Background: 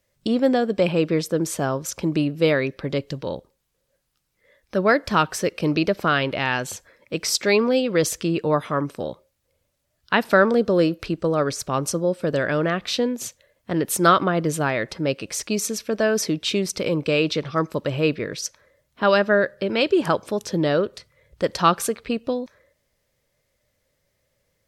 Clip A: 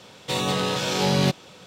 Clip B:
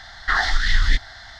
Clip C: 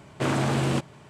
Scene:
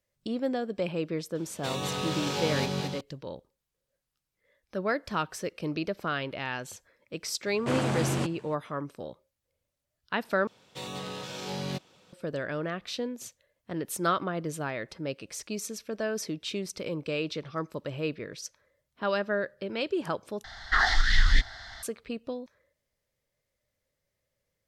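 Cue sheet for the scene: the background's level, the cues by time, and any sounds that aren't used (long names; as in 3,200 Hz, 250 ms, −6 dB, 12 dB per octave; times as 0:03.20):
background −11 dB
0:01.35: mix in A −9 dB + echo with a time of its own for lows and highs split 310 Hz, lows 150 ms, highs 219 ms, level −4 dB
0:07.46: mix in C −4 dB
0:10.47: overwrite with A −13.5 dB
0:20.44: overwrite with B −3.5 dB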